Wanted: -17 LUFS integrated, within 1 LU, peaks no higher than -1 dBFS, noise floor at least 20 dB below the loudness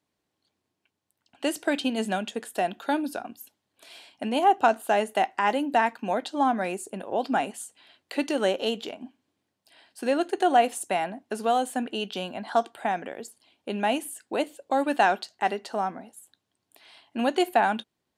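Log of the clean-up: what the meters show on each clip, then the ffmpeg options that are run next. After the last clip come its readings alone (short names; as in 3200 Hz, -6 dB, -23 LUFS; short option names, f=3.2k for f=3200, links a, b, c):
loudness -27.0 LUFS; peak -7.5 dBFS; loudness target -17.0 LUFS
-> -af "volume=10dB,alimiter=limit=-1dB:level=0:latency=1"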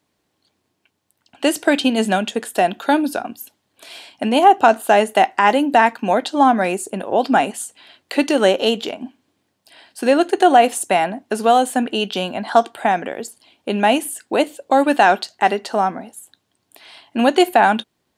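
loudness -17.5 LUFS; peak -1.0 dBFS; noise floor -71 dBFS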